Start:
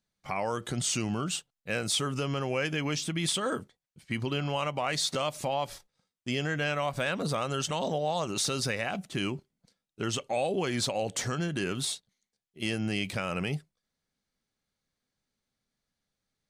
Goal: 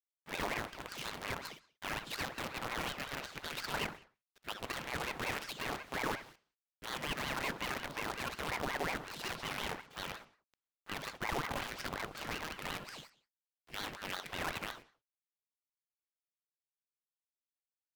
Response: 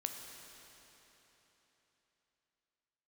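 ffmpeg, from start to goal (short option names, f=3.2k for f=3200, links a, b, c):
-filter_complex "[0:a]highpass=650,lowpass=2.2k,asoftclip=type=hard:threshold=-28.5dB,aecho=1:1:4.6:0.51,alimiter=level_in=9dB:limit=-24dB:level=0:latency=1:release=411,volume=-9dB,aecho=1:1:19|59:0.178|0.562,acrusher=bits=7:dc=4:mix=0:aa=0.000001,asetrate=40517,aresample=44100,asplit=2[a][b];[1:a]atrim=start_sample=2205,afade=t=out:st=0.24:d=0.01,atrim=end_sample=11025,lowpass=5.7k[c];[b][c]afir=irnorm=-1:irlink=0,volume=-6dB[d];[a][d]amix=inputs=2:normalize=0,aeval=exprs='val(0)*sin(2*PI*880*n/s+880*0.85/5.5*sin(2*PI*5.5*n/s))':c=same,volume=2dB"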